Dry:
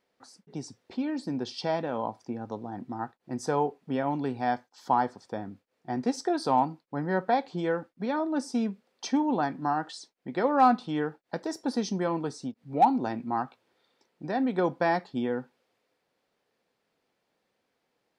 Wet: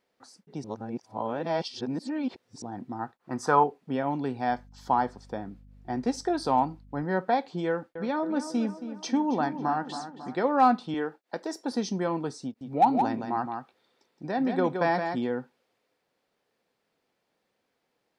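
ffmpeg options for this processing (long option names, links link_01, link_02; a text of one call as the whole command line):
ffmpeg -i in.wav -filter_complex "[0:a]asettb=1/sr,asplit=3[link_01][link_02][link_03];[link_01]atrim=end=3.194[link_04];[link_02]atrim=start=3.19:end=3.64,asetpts=PTS-STARTPTS,afade=type=in:duration=0.004:curve=qsin,afade=type=out:start_time=0.446:duration=0.004:curve=qsin,equalizer=frequency=1200:width=1.4:gain=14.5[link_05];[link_03]atrim=start=3.636[link_06];[link_04][link_05]acrossfade=duration=0.004:curve1=hsin:curve2=qsin[link_07];[link_07][link_06]acrossfade=duration=0.004:curve1=qsin:curve2=hsin,asettb=1/sr,asplit=3[link_08][link_09][link_10];[link_08]atrim=end=4.494[link_11];[link_09]atrim=start=4.49:end=7.03,asetpts=PTS-STARTPTS,afade=type=in:duration=0.004:curve=qsin,afade=type=out:start_time=2.536:duration=0.004:curve=qsin,aeval=exprs='val(0)+0.00282*(sin(2*PI*50*n/s)+sin(2*PI*2*50*n/s)/2+sin(2*PI*3*50*n/s)/3+sin(2*PI*4*50*n/s)/4+sin(2*PI*5*50*n/s)/5)':channel_layout=same[link_12];[link_10]atrim=start=7.026[link_13];[link_11][link_12]acrossfade=duration=0.004:curve1=hsin:curve2=qsin[link_14];[link_14][link_13]acrossfade=duration=0.004:curve1=qsin:curve2=hsin,asettb=1/sr,asplit=3[link_15][link_16][link_17];[link_15]atrim=end=7.684[link_18];[link_16]atrim=start=7.68:end=10.35,asetpts=PTS-STARTPTS,afade=type=in:duration=0.004:curve=qsin,afade=type=out:start_time=2.666:duration=0.004:curve=qsin,asplit=2[link_19][link_20];[link_20]adelay=273,lowpass=frequency=2700:poles=1,volume=-10.5dB,asplit=2[link_21][link_22];[link_22]adelay=273,lowpass=frequency=2700:poles=1,volume=0.54,asplit=2[link_23][link_24];[link_24]adelay=273,lowpass=frequency=2700:poles=1,volume=0.54,asplit=2[link_25][link_26];[link_26]adelay=273,lowpass=frequency=2700:poles=1,volume=0.54,asplit=2[link_27][link_28];[link_28]adelay=273,lowpass=frequency=2700:poles=1,volume=0.54,asplit=2[link_29][link_30];[link_30]adelay=273,lowpass=frequency=2700:poles=1,volume=0.54[link_31];[link_19][link_21][link_23][link_25][link_27][link_29][link_31]amix=inputs=7:normalize=0,atrim=end_sample=117747[link_32];[link_17]atrim=start=10.346[link_33];[link_18][link_32]acrossfade=duration=0.004:curve1=hsin:curve2=qsin[link_34];[link_34][link_33]acrossfade=duration=0.004:curve1=qsin:curve2=hsin,asettb=1/sr,asplit=3[link_35][link_36][link_37];[link_35]atrim=end=10.944[link_38];[link_36]atrim=start=10.94:end=11.72,asetpts=PTS-STARTPTS,afade=type=in:duration=0.004:curve=qsin,afade=type=out:start_time=0.776:duration=0.004:curve=qsin,highpass=250[link_39];[link_37]atrim=start=11.716[link_40];[link_38][link_39]acrossfade=duration=0.004:curve1=hsin:curve2=qsin[link_41];[link_41][link_40]acrossfade=duration=0.004:curve1=qsin:curve2=hsin,asettb=1/sr,asplit=3[link_42][link_43][link_44];[link_42]atrim=end=12.444[link_45];[link_43]atrim=start=12.44:end=15.31,asetpts=PTS-STARTPTS,afade=type=in:duration=0.004:curve=qsin,afade=type=out:start_time=2.866:duration=0.004:curve=qsin,aecho=1:1:169:0.501,atrim=end_sample=126567[link_46];[link_44]atrim=start=15.306[link_47];[link_45][link_46]acrossfade=duration=0.004:curve1=hsin:curve2=qsin[link_48];[link_48][link_47]acrossfade=duration=0.004:curve1=qsin:curve2=hsin,asplit=3[link_49][link_50][link_51];[link_49]atrim=end=0.642[link_52];[link_50]atrim=start=0.638:end=2.622,asetpts=PTS-STARTPTS,areverse[link_53];[link_51]atrim=start=2.618[link_54];[link_52][link_53]acrossfade=duration=0.004:curve1=hsin:curve2=hsin[link_55];[link_55][link_54]acrossfade=duration=0.004:curve1=hsin:curve2=hsin" out.wav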